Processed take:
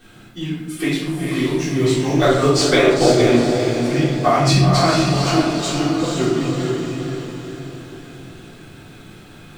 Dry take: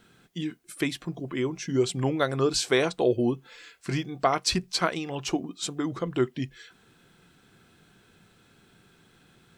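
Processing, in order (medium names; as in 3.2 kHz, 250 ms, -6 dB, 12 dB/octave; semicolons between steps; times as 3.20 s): companding laws mixed up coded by mu; echo that smears into a reverb 468 ms, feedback 50%, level -3 dB; 2.15–3.29 s: transient shaper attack +8 dB, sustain -10 dB; 4.37–5.10 s: peaking EQ 130 Hz +13.5 dB 0.37 oct; simulated room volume 210 m³, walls mixed, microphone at 3.6 m; trim -4.5 dB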